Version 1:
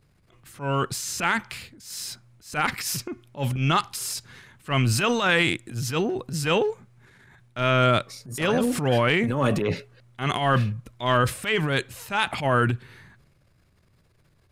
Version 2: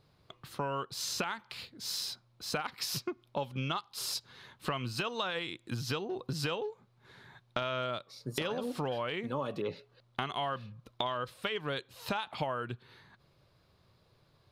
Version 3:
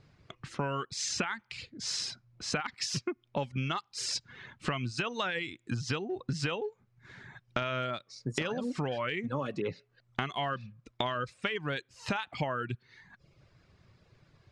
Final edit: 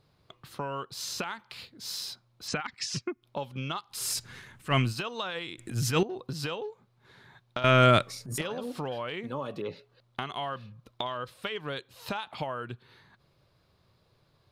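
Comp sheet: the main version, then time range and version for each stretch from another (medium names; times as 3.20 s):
2
2.48–3.23 s: from 3
4.00–4.83 s: from 1, crossfade 0.24 s
5.58–6.03 s: from 1
7.64–8.41 s: from 1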